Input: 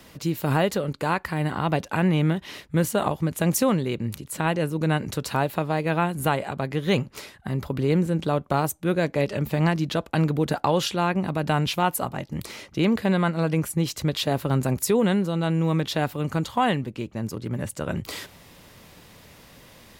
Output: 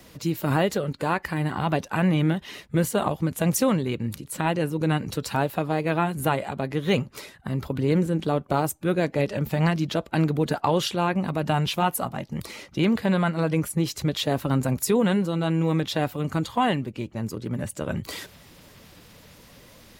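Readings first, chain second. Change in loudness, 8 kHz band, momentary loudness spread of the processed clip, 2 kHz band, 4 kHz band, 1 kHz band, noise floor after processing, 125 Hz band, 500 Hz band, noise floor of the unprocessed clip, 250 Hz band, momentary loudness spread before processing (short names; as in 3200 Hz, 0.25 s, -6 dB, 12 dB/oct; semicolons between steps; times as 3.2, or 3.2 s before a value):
-0.5 dB, -0.5 dB, 8 LU, -1.0 dB, -0.5 dB, -0.5 dB, -51 dBFS, -0.5 dB, -0.5 dB, -51 dBFS, 0.0 dB, 9 LU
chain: bin magnitudes rounded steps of 15 dB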